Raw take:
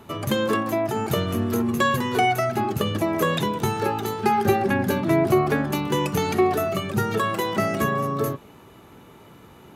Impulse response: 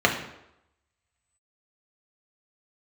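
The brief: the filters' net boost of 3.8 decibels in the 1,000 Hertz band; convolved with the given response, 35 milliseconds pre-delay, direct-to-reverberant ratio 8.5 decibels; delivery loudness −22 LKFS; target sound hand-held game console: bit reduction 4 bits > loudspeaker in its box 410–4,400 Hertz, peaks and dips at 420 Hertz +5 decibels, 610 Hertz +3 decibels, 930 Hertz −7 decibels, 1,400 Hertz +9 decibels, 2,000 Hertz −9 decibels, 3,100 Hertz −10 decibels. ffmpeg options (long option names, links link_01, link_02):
-filter_complex "[0:a]equalizer=frequency=1000:width_type=o:gain=6,asplit=2[link_01][link_02];[1:a]atrim=start_sample=2205,adelay=35[link_03];[link_02][link_03]afir=irnorm=-1:irlink=0,volume=-26.5dB[link_04];[link_01][link_04]amix=inputs=2:normalize=0,acrusher=bits=3:mix=0:aa=0.000001,highpass=410,equalizer=frequency=420:width_type=q:width=4:gain=5,equalizer=frequency=610:width_type=q:width=4:gain=3,equalizer=frequency=930:width_type=q:width=4:gain=-7,equalizer=frequency=1400:width_type=q:width=4:gain=9,equalizer=frequency=2000:width_type=q:width=4:gain=-9,equalizer=frequency=3100:width_type=q:width=4:gain=-10,lowpass=frequency=4400:width=0.5412,lowpass=frequency=4400:width=1.3066,volume=-1.5dB"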